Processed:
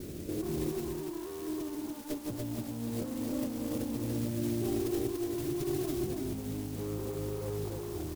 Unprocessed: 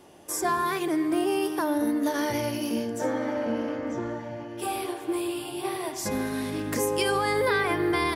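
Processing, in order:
inverse Chebyshev low-pass filter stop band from 1,600 Hz, stop band 60 dB
spectral tilt −3.5 dB per octave
noise that follows the level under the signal 13 dB
tube saturation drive 24 dB, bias 0.3
low-shelf EQ 170 Hz +3 dB
compressor whose output falls as the input rises −33 dBFS, ratio −0.5
brickwall limiter −26.5 dBFS, peak gain reduction 8 dB
on a send: single-tap delay 288 ms −3.5 dB
on the sum: one half of a high-frequency compander encoder only

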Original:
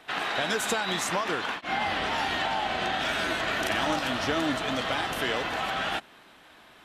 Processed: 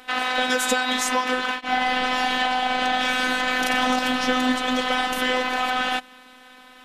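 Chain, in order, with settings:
phases set to zero 254 Hz
level +8 dB

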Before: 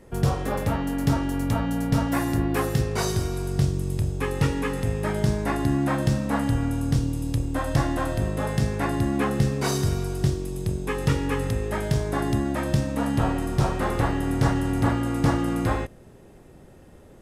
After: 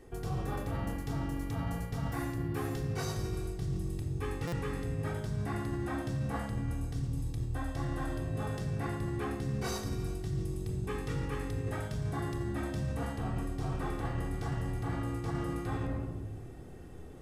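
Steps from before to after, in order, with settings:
convolution reverb RT60 0.95 s, pre-delay 3 ms, DRR 0 dB
reversed playback
downward compressor 6 to 1, threshold −27 dBFS, peak gain reduction 14 dB
reversed playback
buffer that repeats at 0:04.47, samples 256, times 8
level −5 dB

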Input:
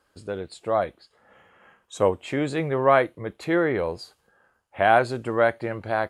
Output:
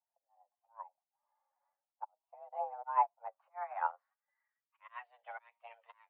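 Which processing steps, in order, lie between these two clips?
spectral magnitudes quantised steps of 15 dB
0:02.04–0:02.83: output level in coarse steps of 16 dB
volume swells 515 ms
flanger 0.4 Hz, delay 5.2 ms, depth 7.3 ms, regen +26%
single-sideband voice off tune +360 Hz 180–3,500 Hz
low-pass filter sweep 830 Hz → 3,000 Hz, 0:02.73–0:05.23
expander for the loud parts 2.5 to 1, over −42 dBFS
level +1 dB

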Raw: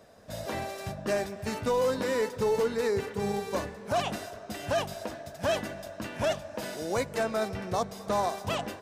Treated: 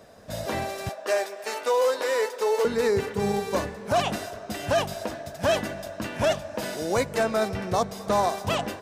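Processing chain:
0:00.89–0:02.65: high-pass filter 420 Hz 24 dB per octave
level +5 dB

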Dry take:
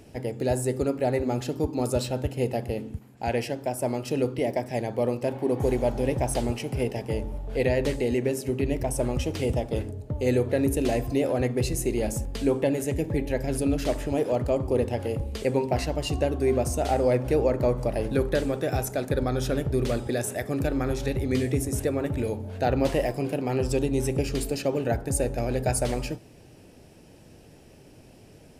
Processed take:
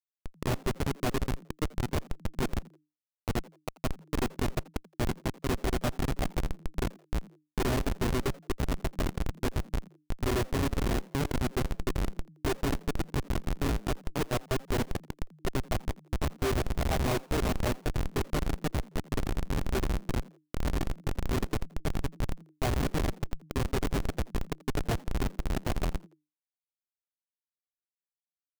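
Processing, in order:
lower of the sound and its delayed copy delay 2.8 ms
bass and treble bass +1 dB, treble −3 dB
log-companded quantiser 4 bits
comparator with hysteresis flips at −24 dBFS
echo with shifted repeats 84 ms, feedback 30%, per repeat +150 Hz, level −23 dB

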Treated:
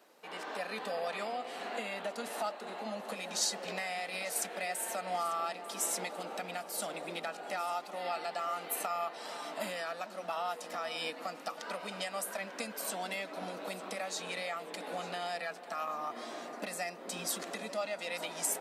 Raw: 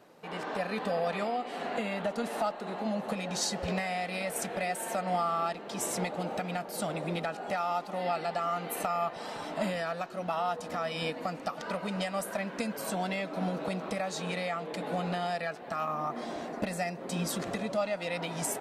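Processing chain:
high-pass filter 210 Hz 24 dB per octave
spectral tilt +2 dB per octave
delay that swaps between a low-pass and a high-pass 447 ms, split 1,300 Hz, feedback 58%, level −12.5 dB
level −4.5 dB

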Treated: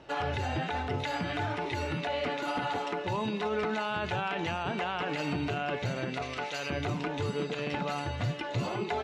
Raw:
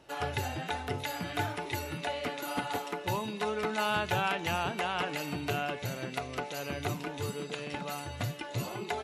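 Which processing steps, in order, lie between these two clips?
0:06.22–0:06.70: tilt shelving filter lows −6 dB
brickwall limiter −28.5 dBFS, peak gain reduction 9 dB
high-frequency loss of the air 120 metres
level +6.5 dB

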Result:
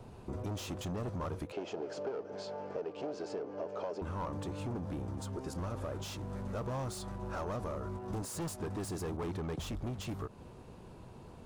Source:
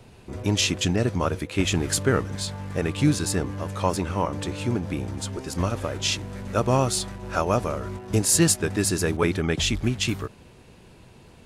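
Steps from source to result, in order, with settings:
gain into a clipping stage and back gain 25.5 dB
0:01.52–0:04.02: loudspeaker in its box 360–5,200 Hz, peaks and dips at 420 Hz +9 dB, 620 Hz +7 dB, 1,100 Hz −9 dB, 1,900 Hz −5 dB, 3,700 Hz −9 dB
downward compressor, threshold −35 dBFS, peak gain reduction 11.5 dB
high shelf with overshoot 1,500 Hz −7 dB, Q 1.5
level −1.5 dB

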